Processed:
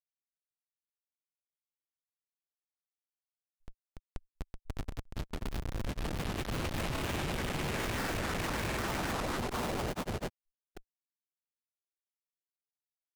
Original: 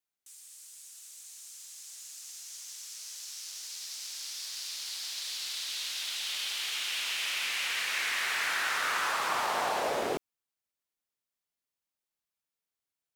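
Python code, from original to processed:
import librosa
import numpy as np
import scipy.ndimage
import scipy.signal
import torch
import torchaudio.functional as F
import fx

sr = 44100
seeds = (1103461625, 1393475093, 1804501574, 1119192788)

y = fx.mod_noise(x, sr, seeds[0], snr_db=34)
y = fx.schmitt(y, sr, flips_db=-28.0)
y = fx.granulator(y, sr, seeds[1], grain_ms=100.0, per_s=20.0, spray_ms=787.0, spread_st=0)
y = y * librosa.db_to_amplitude(3.5)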